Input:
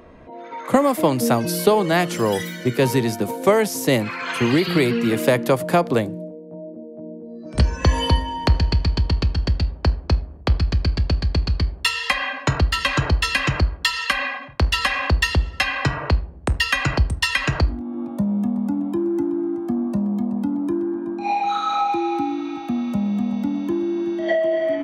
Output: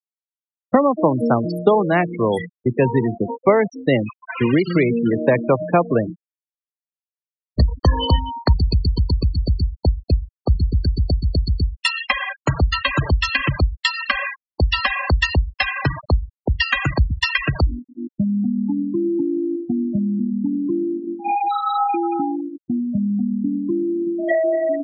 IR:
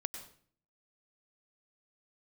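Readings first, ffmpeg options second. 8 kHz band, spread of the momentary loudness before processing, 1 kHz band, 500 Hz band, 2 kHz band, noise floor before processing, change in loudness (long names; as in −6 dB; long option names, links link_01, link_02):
−12.0 dB, 7 LU, +0.5 dB, +1.5 dB, 0.0 dB, −38 dBFS, +1.0 dB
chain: -af "agate=range=-16dB:threshold=-27dB:ratio=16:detection=peak,afftfilt=real='re*gte(hypot(re,im),0.141)':imag='im*gte(hypot(re,im),0.141)':win_size=1024:overlap=0.75,volume=1.5dB"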